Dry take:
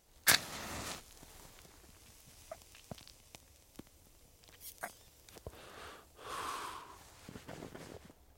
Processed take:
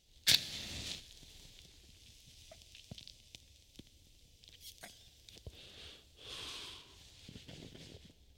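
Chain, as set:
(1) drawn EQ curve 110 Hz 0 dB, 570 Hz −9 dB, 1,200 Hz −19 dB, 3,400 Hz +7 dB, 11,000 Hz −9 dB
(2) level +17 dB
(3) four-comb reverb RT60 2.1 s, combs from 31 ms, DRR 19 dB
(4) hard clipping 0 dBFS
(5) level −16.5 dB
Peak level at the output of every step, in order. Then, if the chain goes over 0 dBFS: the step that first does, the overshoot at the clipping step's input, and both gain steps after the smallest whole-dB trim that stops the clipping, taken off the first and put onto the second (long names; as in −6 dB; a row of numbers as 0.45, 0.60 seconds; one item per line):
−10.5, +6.5, +6.5, 0.0, −16.5 dBFS
step 2, 6.5 dB
step 2 +10 dB, step 5 −9.5 dB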